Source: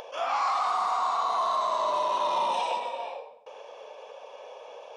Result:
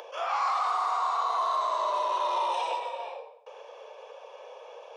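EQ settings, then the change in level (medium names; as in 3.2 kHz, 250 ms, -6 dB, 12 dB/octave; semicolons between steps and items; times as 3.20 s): rippled Chebyshev high-pass 340 Hz, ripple 3 dB; 0.0 dB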